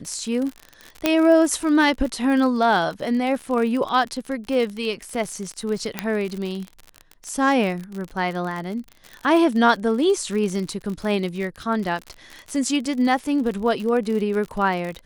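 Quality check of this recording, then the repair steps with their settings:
crackle 49 per s -27 dBFS
1.06 s: pop -3 dBFS
5.99 s: pop -7 dBFS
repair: de-click

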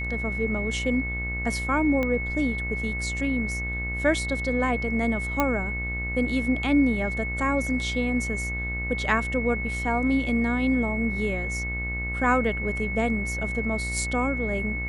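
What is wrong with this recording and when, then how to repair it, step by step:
buzz 60 Hz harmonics 40 -32 dBFS
whine 2.2 kHz -30 dBFS
2.03 s: pop -15 dBFS
5.40 s: pop -8 dBFS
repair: de-click; de-hum 60 Hz, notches 40; band-stop 2.2 kHz, Q 30

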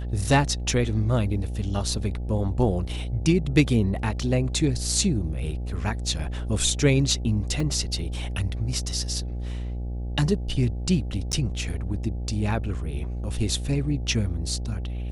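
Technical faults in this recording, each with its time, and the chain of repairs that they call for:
buzz 60 Hz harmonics 14 -30 dBFS
7.60 s: dropout 3.5 ms
11.32–11.33 s: dropout 9.4 ms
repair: de-hum 60 Hz, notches 14; interpolate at 7.60 s, 3.5 ms; interpolate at 11.32 s, 9.4 ms

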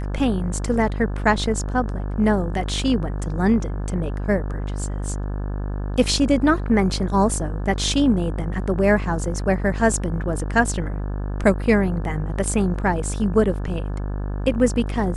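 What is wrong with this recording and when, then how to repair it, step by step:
buzz 50 Hz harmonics 35 -26 dBFS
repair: de-hum 50 Hz, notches 35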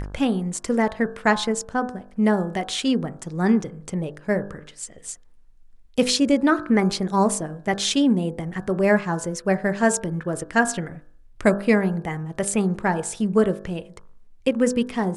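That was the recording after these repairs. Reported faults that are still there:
nothing left

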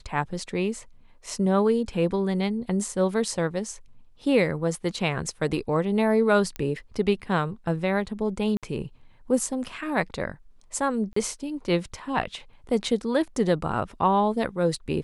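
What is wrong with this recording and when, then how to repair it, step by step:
6.56 s: pop -17 dBFS
8.57–8.63 s: dropout 57 ms
11.13–11.16 s: dropout 34 ms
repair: de-click; interpolate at 8.57 s, 57 ms; interpolate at 11.13 s, 34 ms

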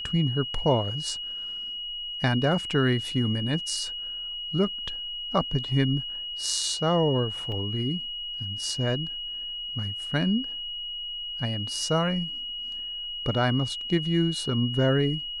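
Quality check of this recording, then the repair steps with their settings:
whine 2.9 kHz -32 dBFS
7.52 s: dropout 2.1 ms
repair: band-stop 2.9 kHz, Q 30; interpolate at 7.52 s, 2.1 ms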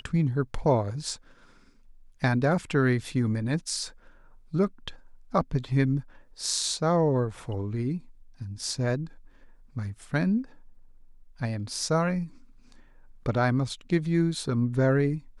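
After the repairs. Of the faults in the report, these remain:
nothing left

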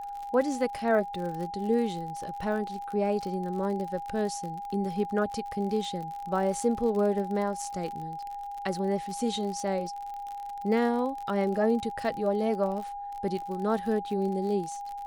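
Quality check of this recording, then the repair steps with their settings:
crackle 52 per s -35 dBFS
whine 810 Hz -35 dBFS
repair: de-click; band-stop 810 Hz, Q 30

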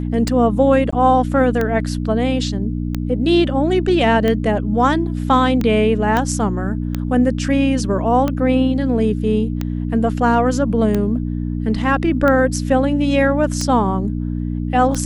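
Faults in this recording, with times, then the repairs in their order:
hum 60 Hz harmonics 5 -22 dBFS
tick 45 rpm -8 dBFS
0.91–0.93 s: dropout 15 ms
6.17 s: pop -6 dBFS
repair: de-click; de-hum 60 Hz, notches 5; interpolate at 0.91 s, 15 ms

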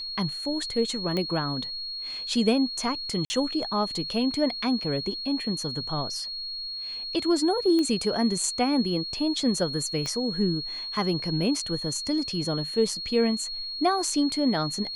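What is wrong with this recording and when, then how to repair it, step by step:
whine 4.3 kHz -32 dBFS
1.17 s: pop -16 dBFS
3.25–3.30 s: dropout 50 ms
7.79 s: pop -16 dBFS
10.06 s: pop -18 dBFS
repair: de-click; band-stop 4.3 kHz, Q 30; interpolate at 3.25 s, 50 ms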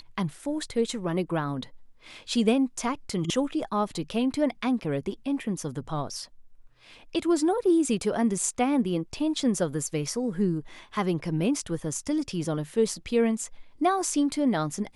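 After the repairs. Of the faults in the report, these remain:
10.06 s: pop

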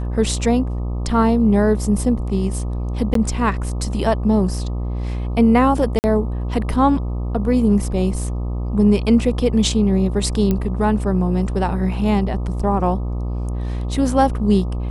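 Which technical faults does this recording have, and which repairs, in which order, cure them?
buzz 60 Hz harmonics 21 -23 dBFS
3.14–3.15 s: dropout 13 ms
5.99–6.04 s: dropout 49 ms
10.51 s: pop -8 dBFS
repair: de-click; de-hum 60 Hz, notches 21; interpolate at 3.14 s, 13 ms; interpolate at 5.99 s, 49 ms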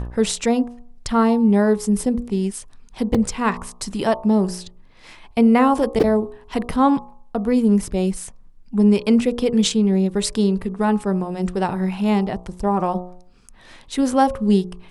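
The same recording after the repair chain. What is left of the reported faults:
nothing left

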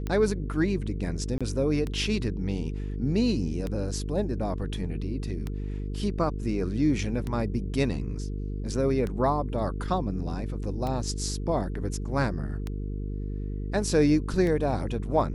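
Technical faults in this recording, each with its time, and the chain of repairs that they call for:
buzz 50 Hz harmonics 9 -32 dBFS
tick 33 1/3 rpm -19 dBFS
1.38–1.41 s: dropout 26 ms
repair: de-click; de-hum 50 Hz, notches 9; interpolate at 1.38 s, 26 ms

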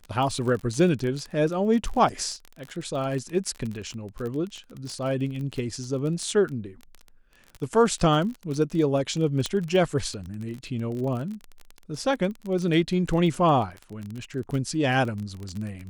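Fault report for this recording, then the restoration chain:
crackle 25 per s -30 dBFS
9.46 s: pop -12 dBFS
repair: de-click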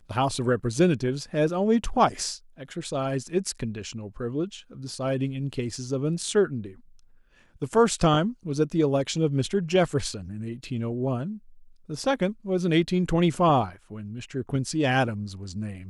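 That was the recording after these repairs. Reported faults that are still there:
nothing left

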